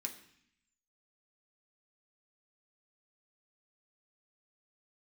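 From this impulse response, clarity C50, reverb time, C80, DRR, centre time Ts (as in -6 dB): 11.0 dB, 0.65 s, 13.5 dB, 2.0 dB, 13 ms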